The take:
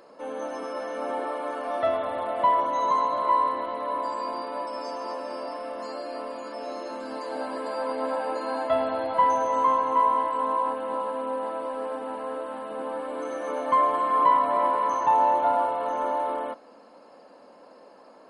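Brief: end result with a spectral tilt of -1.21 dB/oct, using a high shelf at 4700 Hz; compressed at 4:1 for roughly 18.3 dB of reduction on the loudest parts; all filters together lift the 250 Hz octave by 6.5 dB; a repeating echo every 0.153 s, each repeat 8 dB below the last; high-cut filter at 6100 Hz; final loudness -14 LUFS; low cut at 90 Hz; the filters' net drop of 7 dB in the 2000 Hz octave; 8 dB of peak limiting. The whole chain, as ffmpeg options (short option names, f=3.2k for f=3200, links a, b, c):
-af "highpass=90,lowpass=6.1k,equalizer=f=250:t=o:g=7.5,equalizer=f=2k:t=o:g=-8.5,highshelf=f=4.7k:g=-3.5,acompressor=threshold=-41dB:ratio=4,alimiter=level_in=11dB:limit=-24dB:level=0:latency=1,volume=-11dB,aecho=1:1:153|306|459|612|765:0.398|0.159|0.0637|0.0255|0.0102,volume=29dB"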